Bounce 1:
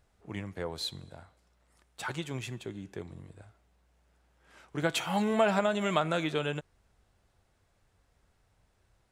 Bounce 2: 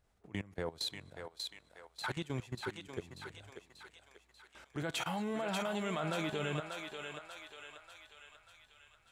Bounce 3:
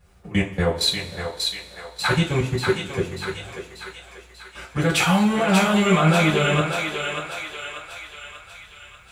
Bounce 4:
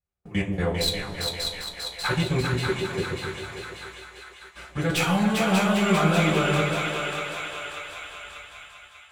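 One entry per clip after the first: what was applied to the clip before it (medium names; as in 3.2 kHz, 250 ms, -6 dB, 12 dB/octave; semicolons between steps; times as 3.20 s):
level held to a coarse grid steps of 19 dB; on a send: thinning echo 589 ms, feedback 58%, high-pass 720 Hz, level -3.5 dB; on the sum: trim +1.5 dB
two-slope reverb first 0.26 s, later 1.7 s, from -20 dB, DRR -9.5 dB; trim +8.5 dB
tracing distortion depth 0.034 ms; gate -42 dBFS, range -29 dB; two-band feedback delay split 770 Hz, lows 131 ms, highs 398 ms, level -4 dB; trim -5 dB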